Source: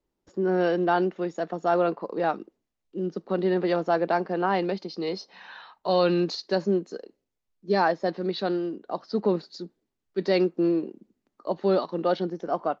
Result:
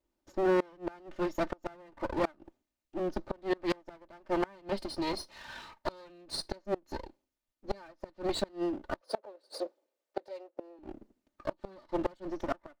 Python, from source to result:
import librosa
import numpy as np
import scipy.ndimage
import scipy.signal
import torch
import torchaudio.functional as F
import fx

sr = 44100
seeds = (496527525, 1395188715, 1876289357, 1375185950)

y = fx.lower_of_two(x, sr, delay_ms=3.3)
y = fx.highpass_res(y, sr, hz=510.0, q=5.3, at=(9.01, 10.79))
y = fx.gate_flip(y, sr, shuts_db=-18.0, range_db=-29)